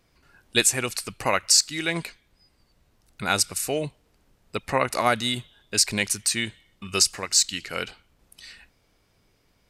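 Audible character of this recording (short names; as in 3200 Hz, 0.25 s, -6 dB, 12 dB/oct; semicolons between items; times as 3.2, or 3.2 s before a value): noise floor -66 dBFS; spectral tilt -3.0 dB/oct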